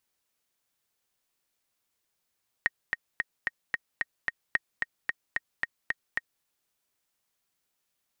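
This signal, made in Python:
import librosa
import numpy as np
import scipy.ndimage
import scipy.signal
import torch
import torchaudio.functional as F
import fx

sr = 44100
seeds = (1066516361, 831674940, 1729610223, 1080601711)

y = fx.click_track(sr, bpm=222, beats=7, bars=2, hz=1870.0, accent_db=4.0, level_db=-10.5)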